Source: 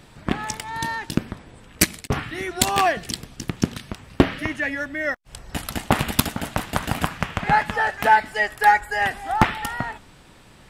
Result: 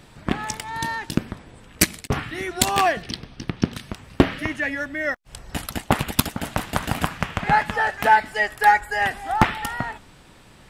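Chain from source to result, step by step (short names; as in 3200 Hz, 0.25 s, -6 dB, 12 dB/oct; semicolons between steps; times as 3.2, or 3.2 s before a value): 3.02–3.73 polynomial smoothing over 15 samples; 5.66–6.41 harmonic-percussive split harmonic -10 dB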